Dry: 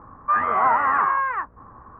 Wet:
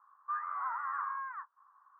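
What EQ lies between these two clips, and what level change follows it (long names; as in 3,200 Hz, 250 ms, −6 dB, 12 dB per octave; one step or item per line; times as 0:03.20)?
flat-topped band-pass 1,200 Hz, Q 1.9
high-frequency loss of the air 76 metres
first difference
0.0 dB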